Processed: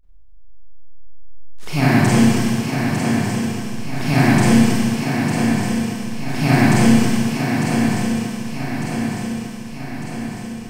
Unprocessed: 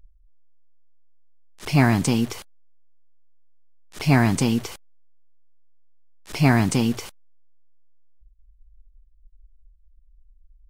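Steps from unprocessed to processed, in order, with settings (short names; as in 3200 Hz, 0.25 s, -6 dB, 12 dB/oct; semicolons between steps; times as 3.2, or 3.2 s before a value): swung echo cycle 1.201 s, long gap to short 3:1, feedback 57%, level -6.5 dB; Schroeder reverb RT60 2.6 s, combs from 31 ms, DRR -9.5 dB; gain -4.5 dB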